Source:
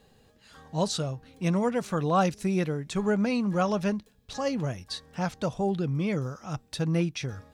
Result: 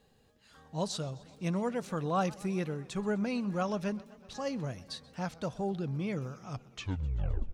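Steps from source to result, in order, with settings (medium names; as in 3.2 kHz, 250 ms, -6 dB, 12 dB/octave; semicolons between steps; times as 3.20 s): tape stop on the ending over 1.07 s; modulated delay 128 ms, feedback 75%, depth 172 cents, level -22 dB; trim -6.5 dB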